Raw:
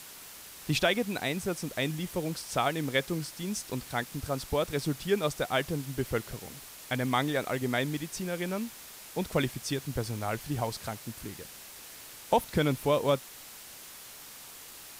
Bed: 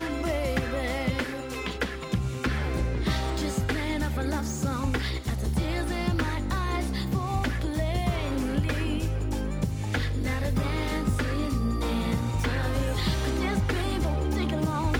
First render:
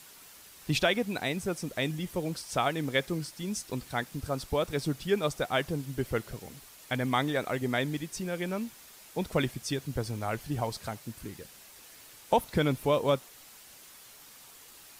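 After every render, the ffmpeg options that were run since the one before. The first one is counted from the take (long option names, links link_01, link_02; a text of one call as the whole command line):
ffmpeg -i in.wav -af "afftdn=noise_reduction=6:noise_floor=-48" out.wav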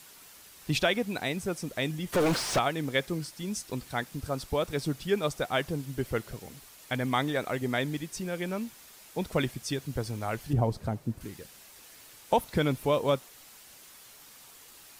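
ffmpeg -i in.wav -filter_complex "[0:a]asplit=3[link_01][link_02][link_03];[link_01]afade=type=out:start_time=2.12:duration=0.02[link_04];[link_02]asplit=2[link_05][link_06];[link_06]highpass=frequency=720:poles=1,volume=34dB,asoftclip=type=tanh:threshold=-16.5dB[link_07];[link_05][link_07]amix=inputs=2:normalize=0,lowpass=frequency=2100:poles=1,volume=-6dB,afade=type=in:start_time=2.12:duration=0.02,afade=type=out:start_time=2.58:duration=0.02[link_08];[link_03]afade=type=in:start_time=2.58:duration=0.02[link_09];[link_04][link_08][link_09]amix=inputs=3:normalize=0,asettb=1/sr,asplit=3[link_10][link_11][link_12];[link_10]atrim=end=10.534[link_13];[link_11]atrim=start=10.53:end=11.21,asetpts=PTS-STARTPTS,afade=type=in:duration=0.004:curve=qsin,afade=type=out:start_time=0.676:duration=0.004:curve=qsin,tiltshelf=frequency=910:gain=9.5[link_14];[link_12]atrim=start=11.206[link_15];[link_13][link_14]acrossfade=duration=0.004:curve1=hsin:curve2=qsin[link_16];[link_16][link_15]acrossfade=duration=0.004:curve1=qsin:curve2=hsin" out.wav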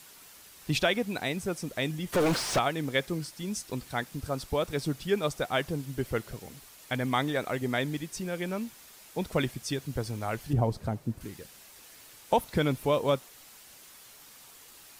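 ffmpeg -i in.wav -af anull out.wav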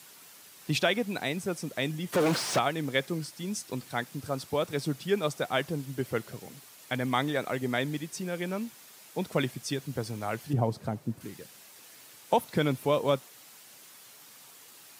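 ffmpeg -i in.wav -af "highpass=frequency=110:width=0.5412,highpass=frequency=110:width=1.3066" out.wav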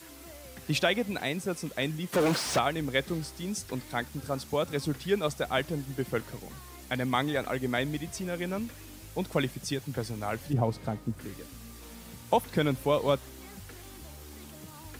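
ffmpeg -i in.wav -i bed.wav -filter_complex "[1:a]volume=-21dB[link_01];[0:a][link_01]amix=inputs=2:normalize=0" out.wav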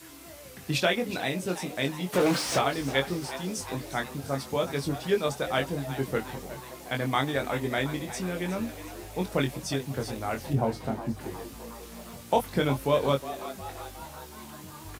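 ffmpeg -i in.wav -filter_complex "[0:a]asplit=2[link_01][link_02];[link_02]adelay=22,volume=-4.5dB[link_03];[link_01][link_03]amix=inputs=2:normalize=0,asplit=7[link_04][link_05][link_06][link_07][link_08][link_09][link_10];[link_05]adelay=362,afreqshift=120,volume=-13.5dB[link_11];[link_06]adelay=724,afreqshift=240,volume=-17.9dB[link_12];[link_07]adelay=1086,afreqshift=360,volume=-22.4dB[link_13];[link_08]adelay=1448,afreqshift=480,volume=-26.8dB[link_14];[link_09]adelay=1810,afreqshift=600,volume=-31.2dB[link_15];[link_10]adelay=2172,afreqshift=720,volume=-35.7dB[link_16];[link_04][link_11][link_12][link_13][link_14][link_15][link_16]amix=inputs=7:normalize=0" out.wav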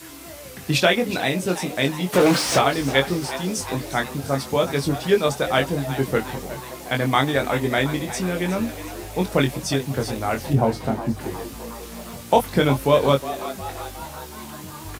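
ffmpeg -i in.wav -af "volume=7.5dB" out.wav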